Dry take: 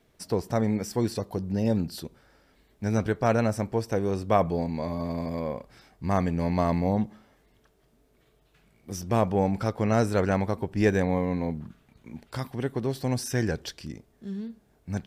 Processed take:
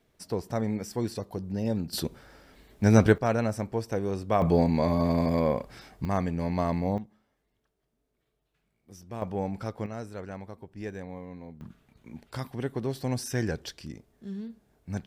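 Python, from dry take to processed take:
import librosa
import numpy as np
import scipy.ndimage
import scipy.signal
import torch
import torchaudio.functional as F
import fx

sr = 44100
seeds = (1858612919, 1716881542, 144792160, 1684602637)

y = fx.gain(x, sr, db=fx.steps((0.0, -4.0), (1.93, 7.0), (3.18, -3.0), (4.42, 6.0), (6.05, -3.0), (6.98, -14.0), (9.22, -7.0), (9.86, -15.0), (11.61, -2.5)))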